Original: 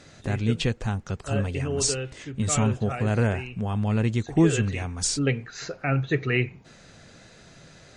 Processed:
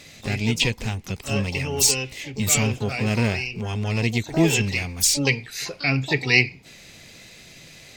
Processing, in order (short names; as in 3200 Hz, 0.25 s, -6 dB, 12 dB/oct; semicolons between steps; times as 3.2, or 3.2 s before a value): resonant high shelf 1800 Hz +6.5 dB, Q 3; harmoniser +12 st -10 dB